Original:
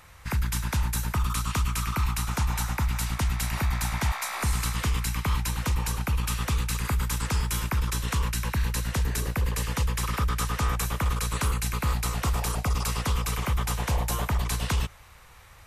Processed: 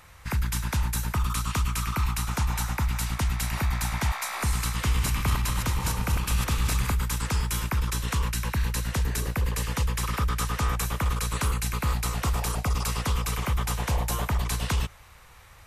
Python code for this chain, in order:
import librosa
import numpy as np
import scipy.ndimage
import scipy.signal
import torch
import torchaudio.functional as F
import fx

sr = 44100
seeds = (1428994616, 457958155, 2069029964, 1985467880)

y = fx.reverse_delay_fb(x, sr, ms=117, feedback_pct=59, wet_db=-4.5, at=(4.72, 6.92))